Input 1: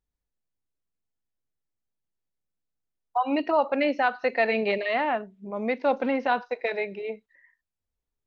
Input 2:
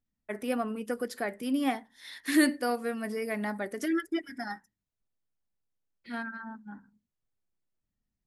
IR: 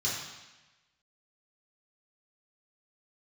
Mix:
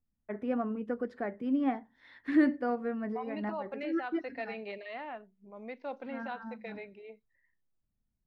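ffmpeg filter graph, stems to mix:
-filter_complex "[0:a]volume=-16dB,asplit=2[link_01][link_02];[1:a]lowpass=1600,lowshelf=frequency=220:gain=7,volume=-3dB[link_03];[link_02]apad=whole_len=364426[link_04];[link_03][link_04]sidechaincompress=threshold=-43dB:ratio=8:attack=11:release=104[link_05];[link_01][link_05]amix=inputs=2:normalize=0"

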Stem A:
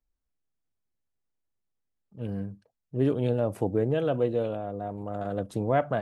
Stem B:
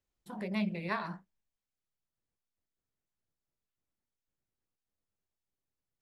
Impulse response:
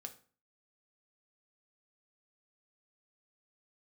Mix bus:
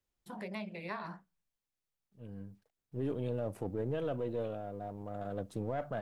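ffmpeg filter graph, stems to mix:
-filter_complex "[0:a]aeval=exprs='if(lt(val(0),0),0.708*val(0),val(0))':channel_layout=same,acrusher=bits=11:mix=0:aa=0.000001,volume=-6.5dB[link_01];[1:a]acrossover=split=410|1200[link_02][link_03][link_04];[link_02]acompressor=threshold=-45dB:ratio=4[link_05];[link_03]acompressor=threshold=-40dB:ratio=4[link_06];[link_04]acompressor=threshold=-45dB:ratio=4[link_07];[link_05][link_06][link_07]amix=inputs=3:normalize=0,volume=-1dB,asplit=3[link_08][link_09][link_10];[link_09]volume=-17dB[link_11];[link_10]apad=whole_len=265394[link_12];[link_01][link_12]sidechaincompress=threshold=-55dB:ratio=6:attack=5.2:release=1370[link_13];[2:a]atrim=start_sample=2205[link_14];[link_11][link_14]afir=irnorm=-1:irlink=0[link_15];[link_13][link_08][link_15]amix=inputs=3:normalize=0,alimiter=level_in=3.5dB:limit=-24dB:level=0:latency=1:release=14,volume=-3.5dB"

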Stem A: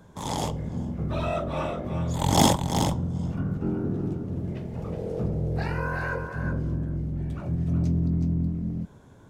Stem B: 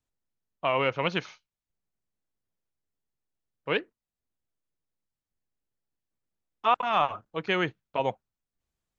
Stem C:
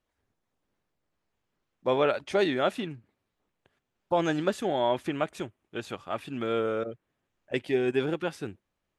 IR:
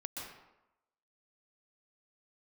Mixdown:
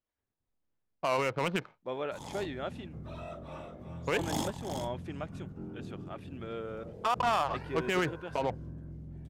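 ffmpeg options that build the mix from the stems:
-filter_complex "[0:a]highshelf=frequency=7800:gain=7,adelay=1950,volume=-15dB[link_01];[1:a]adynamicsmooth=sensitivity=4.5:basefreq=510,adelay=400,volume=2.5dB[link_02];[2:a]volume=-11.5dB[link_03];[link_01][link_02][link_03]amix=inputs=3:normalize=0,highshelf=frequency=7500:gain=-5,alimiter=limit=-20dB:level=0:latency=1:release=38"

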